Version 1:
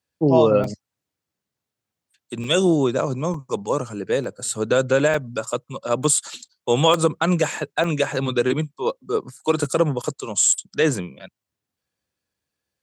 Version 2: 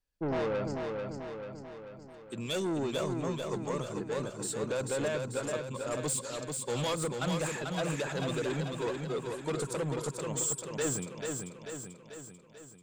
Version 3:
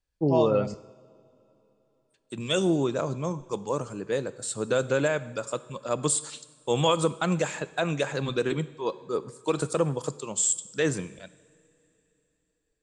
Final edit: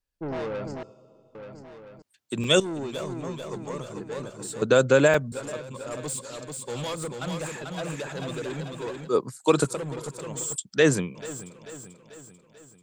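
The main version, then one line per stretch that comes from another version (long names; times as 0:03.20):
2
0:00.83–0:01.35: punch in from 3
0:02.02–0:02.60: punch in from 1
0:04.62–0:05.32: punch in from 1
0:09.08–0:09.70: punch in from 1, crossfade 0.16 s
0:10.56–0:11.15: punch in from 1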